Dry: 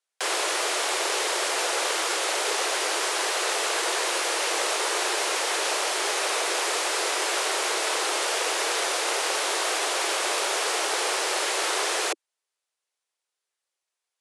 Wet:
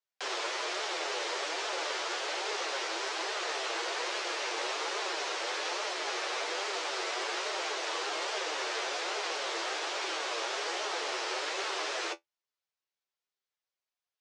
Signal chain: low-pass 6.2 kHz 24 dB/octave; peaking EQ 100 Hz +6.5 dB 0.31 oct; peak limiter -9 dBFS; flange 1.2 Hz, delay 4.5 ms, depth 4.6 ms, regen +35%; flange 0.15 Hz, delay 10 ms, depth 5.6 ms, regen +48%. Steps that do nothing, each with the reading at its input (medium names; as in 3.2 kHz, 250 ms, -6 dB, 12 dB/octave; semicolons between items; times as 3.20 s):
peaking EQ 100 Hz: input has nothing below 270 Hz; peak limiter -9 dBFS: peak at its input -13.5 dBFS